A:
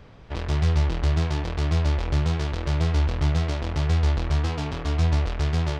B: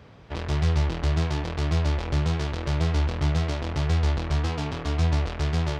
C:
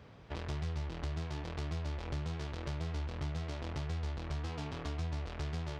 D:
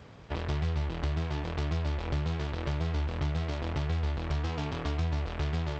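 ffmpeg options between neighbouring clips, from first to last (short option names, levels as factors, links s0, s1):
-af "highpass=66"
-af "acompressor=threshold=0.0282:ratio=3,volume=0.501"
-filter_complex "[0:a]asplit=2[s0][s1];[s1]aeval=exprs='sgn(val(0))*max(abs(val(0))-0.00158,0)':c=same,volume=0.668[s2];[s0][s2]amix=inputs=2:normalize=0,volume=1.41" -ar 16000 -c:a g722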